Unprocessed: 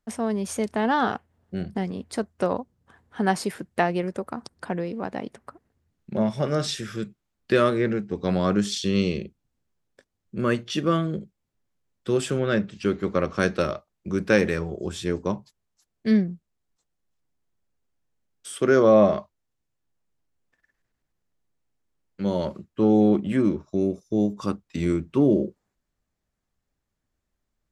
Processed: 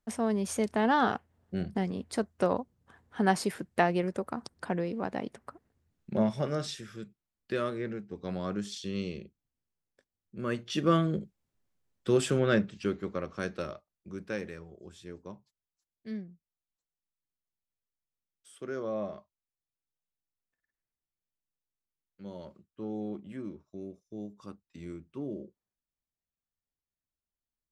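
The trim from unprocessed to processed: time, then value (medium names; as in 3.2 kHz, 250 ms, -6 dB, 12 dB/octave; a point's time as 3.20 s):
6.19 s -3 dB
6.89 s -12 dB
10.35 s -12 dB
10.92 s -2 dB
12.52 s -2 dB
13.23 s -12 dB
13.73 s -12 dB
14.66 s -18.5 dB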